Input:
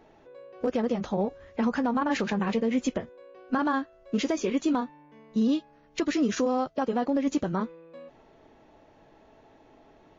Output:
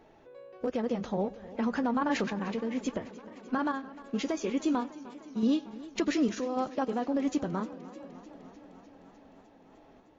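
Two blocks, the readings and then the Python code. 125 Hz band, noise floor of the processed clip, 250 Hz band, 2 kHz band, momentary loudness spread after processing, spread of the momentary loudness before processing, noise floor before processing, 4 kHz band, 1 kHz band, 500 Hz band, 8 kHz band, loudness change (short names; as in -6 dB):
-4.0 dB, -58 dBFS, -3.5 dB, -3.5 dB, 18 LU, 7 LU, -58 dBFS, -3.5 dB, -3.5 dB, -4.0 dB, n/a, -3.5 dB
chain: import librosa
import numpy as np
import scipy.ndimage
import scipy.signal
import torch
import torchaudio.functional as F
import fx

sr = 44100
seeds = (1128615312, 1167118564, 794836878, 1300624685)

y = x + 10.0 ** (-22.0 / 20.0) * np.pad(x, (int(95 * sr / 1000.0), 0))[:len(x)]
y = fx.tremolo_random(y, sr, seeds[0], hz=3.5, depth_pct=55)
y = fx.echo_warbled(y, sr, ms=303, feedback_pct=75, rate_hz=2.8, cents=64, wet_db=-18)
y = y * 10.0 ** (-1.5 / 20.0)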